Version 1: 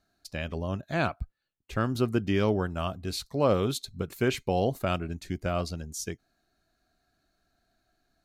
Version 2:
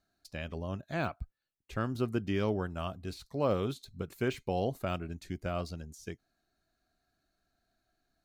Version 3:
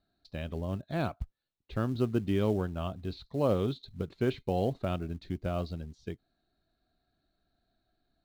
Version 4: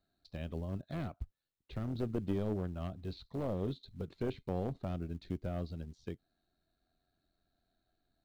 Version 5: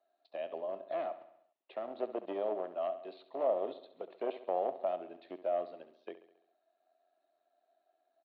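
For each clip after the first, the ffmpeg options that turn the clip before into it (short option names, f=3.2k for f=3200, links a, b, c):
-af "deesser=0.95,volume=-5.5dB"
-filter_complex "[0:a]lowpass=f=3.9k:t=q:w=4.6,tiltshelf=f=1.4k:g=7.5,asplit=2[a][b];[b]acrusher=bits=5:mode=log:mix=0:aa=0.000001,volume=-5.5dB[c];[a][c]amix=inputs=2:normalize=0,volume=-7.5dB"
-filter_complex "[0:a]acrossover=split=440[a][b];[b]acompressor=threshold=-45dB:ratio=2[c];[a][c]amix=inputs=2:normalize=0,tremolo=f=89:d=0.462,aeval=exprs='clip(val(0),-1,0.0266)':c=same,volume=-1.5dB"
-af "highpass=f=420:w=0.5412,highpass=f=420:w=1.3066,equalizer=f=450:t=q:w=4:g=-5,equalizer=f=650:t=q:w=4:g=10,equalizer=f=1.5k:t=q:w=4:g=-9,equalizer=f=2.2k:t=q:w=4:g=-5,lowpass=f=2.8k:w=0.5412,lowpass=f=2.8k:w=1.3066,aecho=1:1:68|136|204|272|340|408:0.211|0.116|0.0639|0.0352|0.0193|0.0106,volume=5.5dB"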